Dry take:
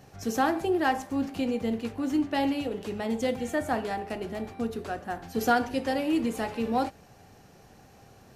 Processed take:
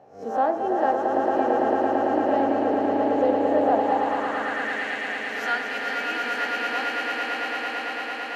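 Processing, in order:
peak hold with a rise ahead of every peak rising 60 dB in 0.38 s
echo that builds up and dies away 112 ms, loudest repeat 8, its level −5 dB
band-pass filter sweep 630 Hz → 2,100 Hz, 0:03.65–0:04.90
level +7 dB

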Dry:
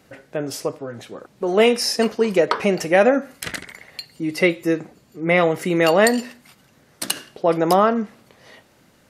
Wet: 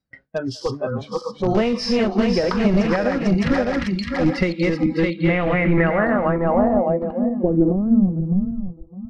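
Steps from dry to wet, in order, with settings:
feedback delay that plays each chunk backwards 304 ms, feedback 61%, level −1.5 dB
reversed playback
upward compression, threshold −23 dBFS
reversed playback
graphic EQ with 15 bands 100 Hz −3 dB, 400 Hz −7 dB, 1,600 Hz +5 dB, 6,300 Hz −5 dB
noise reduction from a noise print of the clip's start 24 dB
in parallel at −10 dB: wrap-around overflow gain 17 dB
on the sum: downward compressor 6 to 1, threshold −20 dBFS, peak gain reduction 11 dB
spectral tilt −4 dB per octave
far-end echo of a speakerphone 200 ms, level −26 dB
noise gate with hold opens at −36 dBFS
low-pass filter sweep 5,300 Hz → 110 Hz, 0:04.77–0:08.76

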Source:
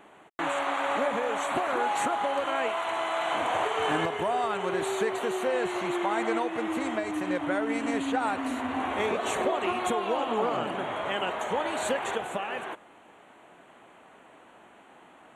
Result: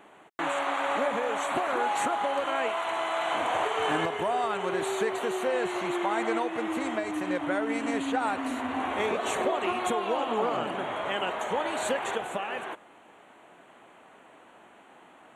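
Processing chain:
low-shelf EQ 120 Hz −4.5 dB

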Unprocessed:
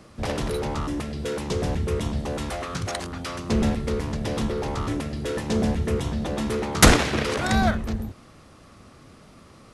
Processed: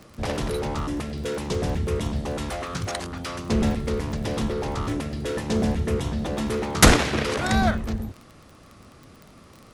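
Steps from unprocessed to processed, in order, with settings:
surface crackle 27 per second −34 dBFS

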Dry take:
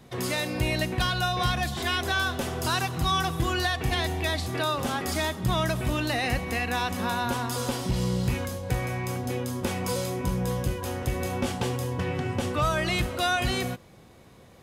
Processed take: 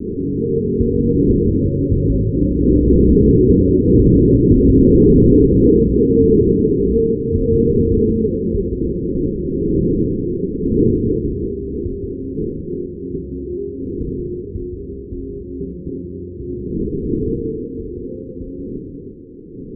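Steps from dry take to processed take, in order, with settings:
wind on the microphone 480 Hz −29 dBFS
source passing by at 0:03.07, 9 m/s, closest 7.6 metres
Butterworth low-pass 620 Hz 96 dB per octave
low-shelf EQ 340 Hz −10 dB
mains-hum notches 60/120/180/240 Hz
in parallel at −3 dB: speech leveller within 4 dB 0.5 s
on the sum: echo with a time of its own for lows and highs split 330 Hz, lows 130 ms, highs 236 ms, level −6 dB
on a send at −19 dB: convolution reverb RT60 0.35 s, pre-delay 5 ms
on the sum: wrong playback speed 45 rpm record played at 33 rpm
boost into a limiter +23 dB
level −1.5 dB

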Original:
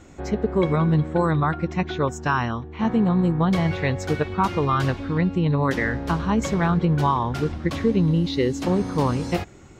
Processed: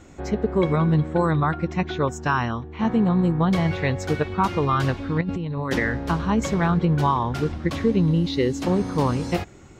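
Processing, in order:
0:05.21–0:05.80: compressor whose output falls as the input rises −24 dBFS, ratio −0.5

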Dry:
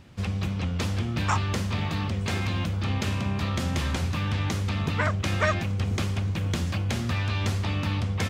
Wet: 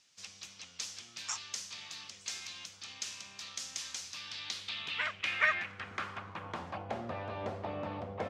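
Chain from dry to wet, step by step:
band-pass filter sweep 6,100 Hz → 620 Hz, 0:04.03–0:07.12
level +3 dB

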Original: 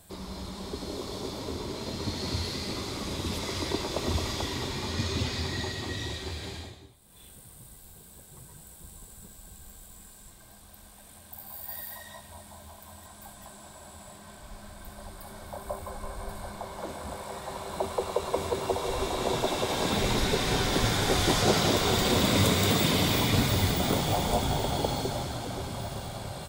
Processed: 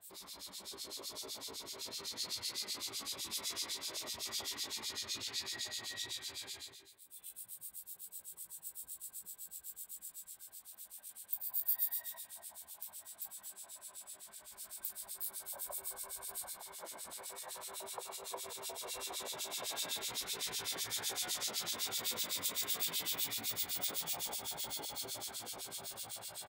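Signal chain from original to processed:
0:14.52–0:16.53: high-shelf EQ 5,400 Hz +7 dB
downward compressor 6 to 1, threshold −28 dBFS, peak gain reduction 10 dB
spectral tilt +4.5 dB per octave
tuned comb filter 56 Hz, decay 0.5 s, harmonics all, mix 80%
single-tap delay 244 ms −14 dB
two-band tremolo in antiphase 7.9 Hz, depth 100%, crossover 2,200 Hz
level −1 dB

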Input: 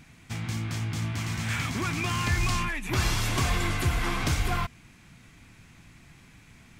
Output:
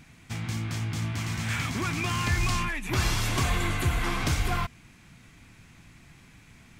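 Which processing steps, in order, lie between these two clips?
0:03.43–0:04.04: parametric band 5,200 Hz −7 dB 0.27 octaves

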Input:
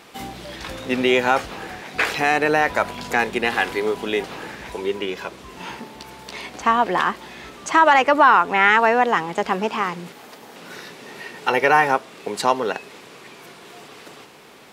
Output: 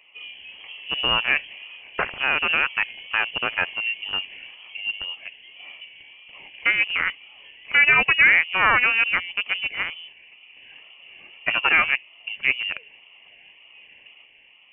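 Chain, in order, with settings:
adaptive Wiener filter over 25 samples
tape wow and flutter 140 cents
low-shelf EQ 270 Hz −7 dB
voice inversion scrambler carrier 3,200 Hz
level −1.5 dB

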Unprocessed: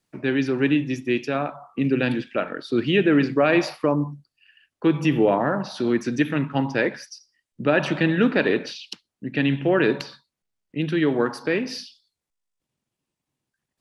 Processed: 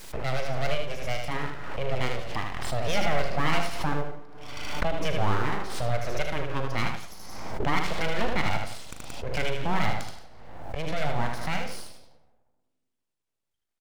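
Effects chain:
parametric band 140 Hz −2.5 dB
comb and all-pass reverb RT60 1.3 s, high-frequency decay 0.35×, pre-delay 110 ms, DRR 18.5 dB
full-wave rectification
double-tracking delay 39 ms −13.5 dB
multi-tap delay 77/177 ms −5/−16 dB
background raised ahead of every attack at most 35 dB per second
level −5.5 dB

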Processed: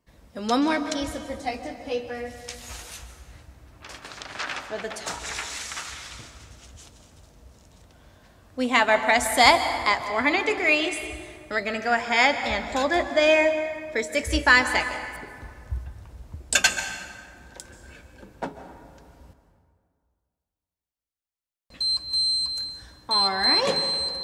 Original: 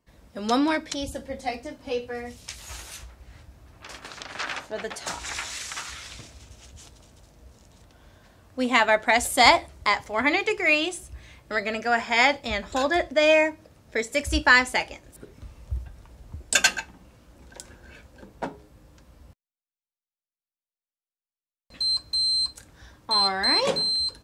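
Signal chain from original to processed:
dense smooth reverb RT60 2.1 s, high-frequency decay 0.55×, pre-delay 120 ms, DRR 9 dB

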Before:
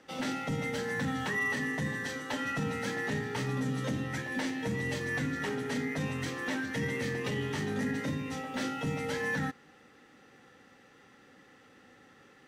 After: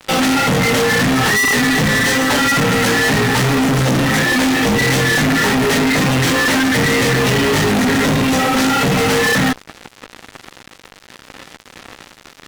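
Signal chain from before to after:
chorus effect 1.8 Hz, delay 15.5 ms, depth 3.5 ms
fuzz pedal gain 51 dB, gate −56 dBFS

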